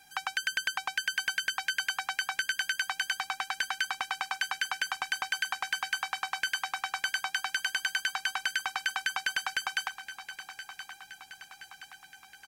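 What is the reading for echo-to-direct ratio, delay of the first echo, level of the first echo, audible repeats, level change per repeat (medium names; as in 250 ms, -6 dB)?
-11.0 dB, 1023 ms, -12.5 dB, 4, -5.0 dB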